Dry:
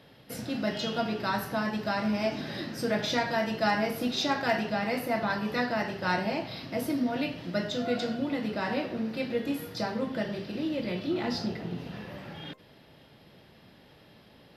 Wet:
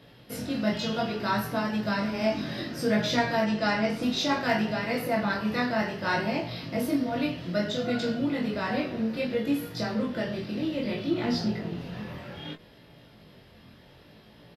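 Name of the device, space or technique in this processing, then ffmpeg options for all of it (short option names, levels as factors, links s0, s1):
double-tracked vocal: -filter_complex "[0:a]asettb=1/sr,asplit=3[s0][s1][s2];[s0]atrim=end=3.444[s3];[s1]atrim=start=3.44:end=4.03,asetpts=PTS-STARTPTS,afade=t=in:d=0.004:c=qsin,afade=t=out:st=0.586:d=0.004:c=qsin,lowpass=f=8700:w=0.5412,lowpass=f=8700:w=1.3066[s4];[s2]atrim=start=4.026[s5];[s3][s4]acrossfade=d=0.004:c1=hsin:c2=qsin[s6];[s6][s5]acrossfade=d=0.004:c1=qsin:c2=hsin,lowshelf=f=130:g=4.5,bandreject=f=800:w=19,asplit=2[s7][s8];[s8]adelay=24,volume=0.422[s9];[s7][s9]amix=inputs=2:normalize=0,flanger=delay=17:depth=6.2:speed=0.62,volume=1.58"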